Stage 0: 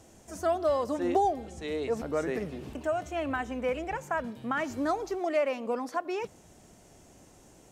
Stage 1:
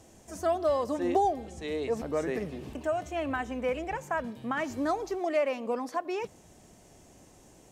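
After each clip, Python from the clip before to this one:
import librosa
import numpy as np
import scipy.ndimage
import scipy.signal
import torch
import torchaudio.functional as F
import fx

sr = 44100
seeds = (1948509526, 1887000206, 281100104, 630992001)

y = fx.notch(x, sr, hz=1400.0, q=14.0)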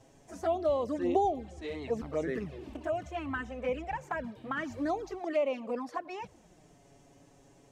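y = fx.high_shelf(x, sr, hz=7200.0, db=-11.5)
y = fx.env_flanger(y, sr, rest_ms=8.2, full_db=-25.0)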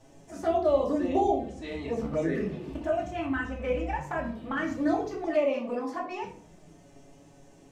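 y = fx.room_shoebox(x, sr, seeds[0], volume_m3=450.0, walls='furnished', distance_m=2.5)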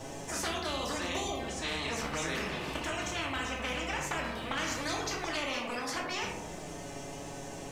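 y = fx.spectral_comp(x, sr, ratio=4.0)
y = F.gain(torch.from_numpy(y), -6.5).numpy()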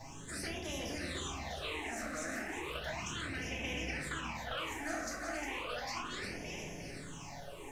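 y = fx.echo_feedback(x, sr, ms=356, feedback_pct=56, wet_db=-6)
y = fx.phaser_stages(y, sr, stages=8, low_hz=120.0, high_hz=1300.0, hz=0.34, feedback_pct=25)
y = F.gain(torch.from_numpy(y), -3.5).numpy()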